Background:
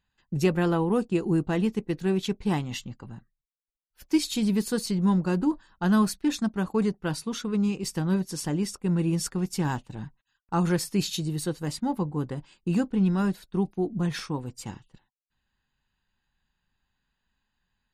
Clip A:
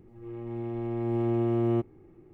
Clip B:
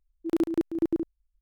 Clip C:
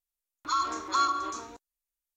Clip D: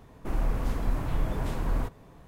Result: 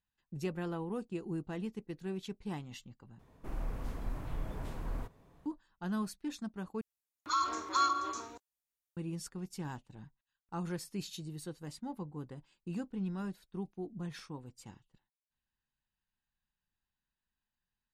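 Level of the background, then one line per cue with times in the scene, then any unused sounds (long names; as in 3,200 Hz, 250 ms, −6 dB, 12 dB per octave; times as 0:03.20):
background −14 dB
0:03.19: overwrite with D −10.5 dB
0:06.81: overwrite with C −3.5 dB + high-pass filter 57 Hz
not used: A, B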